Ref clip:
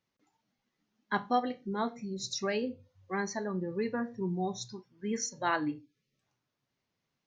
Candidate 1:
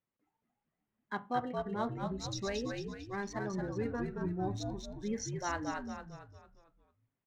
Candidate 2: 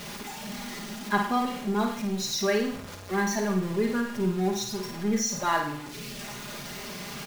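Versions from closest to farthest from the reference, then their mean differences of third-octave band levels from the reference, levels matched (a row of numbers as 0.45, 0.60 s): 1, 2; 9.5, 13.5 dB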